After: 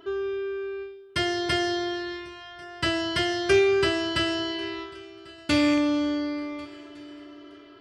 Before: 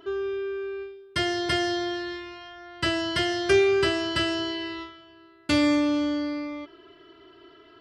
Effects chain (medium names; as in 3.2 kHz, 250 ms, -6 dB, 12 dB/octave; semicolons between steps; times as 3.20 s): rattle on loud lows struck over -27 dBFS, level -24 dBFS; shuffle delay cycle 1459 ms, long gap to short 3:1, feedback 40%, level -23.5 dB